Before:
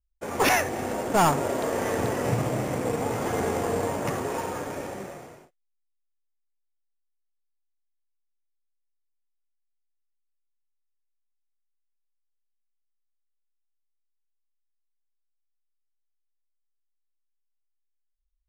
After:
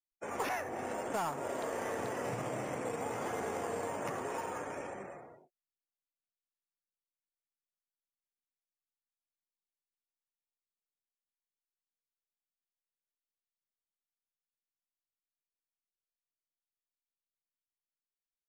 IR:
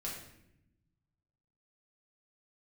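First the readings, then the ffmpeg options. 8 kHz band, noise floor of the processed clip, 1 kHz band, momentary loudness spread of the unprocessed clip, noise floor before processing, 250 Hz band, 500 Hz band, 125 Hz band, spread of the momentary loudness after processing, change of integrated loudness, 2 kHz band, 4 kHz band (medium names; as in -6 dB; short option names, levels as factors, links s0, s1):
-12.5 dB, under -85 dBFS, -10.5 dB, 13 LU, -76 dBFS, -13.0 dB, -10.5 dB, -16.5 dB, 7 LU, -11.5 dB, -11.5 dB, -15.0 dB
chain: -filter_complex "[0:a]afftdn=nr=27:nf=-49,lowshelf=f=400:g=-9,acrossover=split=99|1700[s0][s1][s2];[s0]acompressor=threshold=0.00112:ratio=4[s3];[s1]acompressor=threshold=0.0316:ratio=4[s4];[s2]acompressor=threshold=0.00631:ratio=4[s5];[s3][s4][s5]amix=inputs=3:normalize=0,volume=0.631"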